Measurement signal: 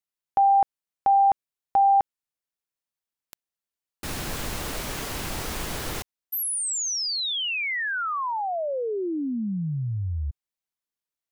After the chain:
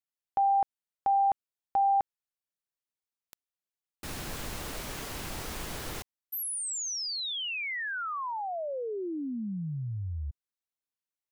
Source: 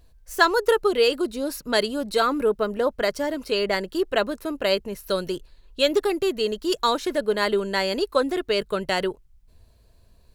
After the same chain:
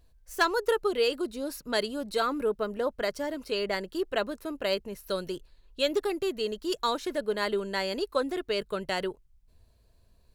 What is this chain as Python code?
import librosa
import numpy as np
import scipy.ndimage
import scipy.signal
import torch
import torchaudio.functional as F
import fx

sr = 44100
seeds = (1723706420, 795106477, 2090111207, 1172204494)

y = np.minimum(x, 2.0 * 10.0 ** (-9.5 / 20.0) - x)
y = y * 10.0 ** (-6.5 / 20.0)